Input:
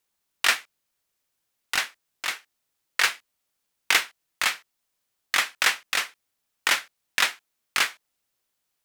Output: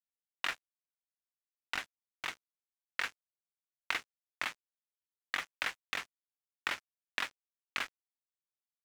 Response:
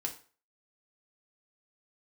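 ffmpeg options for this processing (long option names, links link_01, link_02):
-af "lowpass=3200,equalizer=frequency=270:width_type=o:width=0.22:gain=8,bandreject=frequency=431.5:width_type=h:width=4,bandreject=frequency=863:width_type=h:width=4,bandreject=frequency=1294.5:width_type=h:width=4,bandreject=frequency=1726:width_type=h:width=4,acompressor=threshold=-31dB:ratio=3,aeval=exprs='sgn(val(0))*max(abs(val(0))-0.0119,0)':channel_layout=same,volume=-1.5dB"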